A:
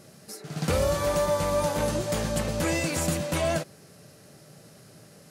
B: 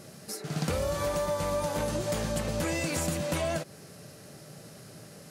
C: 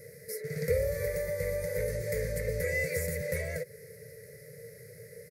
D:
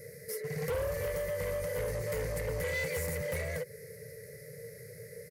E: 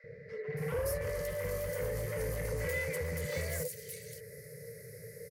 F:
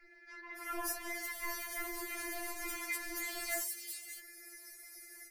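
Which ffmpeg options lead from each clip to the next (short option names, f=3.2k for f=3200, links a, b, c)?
-af "acompressor=threshold=-30dB:ratio=6,volume=3dB"
-af "firequalizer=gain_entry='entry(120,0);entry(310,-28);entry(460,13);entry(770,-28);entry(1200,-22);entry(2000,9);entry(2900,-26);entry(4500,-8);entry(7600,-9);entry(12000,4)':delay=0.05:min_phase=1"
-af "asoftclip=type=tanh:threshold=-31dB,volume=1.5dB"
-filter_complex "[0:a]acrossover=split=790|3100[a][b][c];[a]adelay=40[d];[c]adelay=570[e];[d][b][e]amix=inputs=3:normalize=0"
-af "afftfilt=real='re*4*eq(mod(b,16),0)':imag='im*4*eq(mod(b,16),0)':win_size=2048:overlap=0.75,volume=6dB"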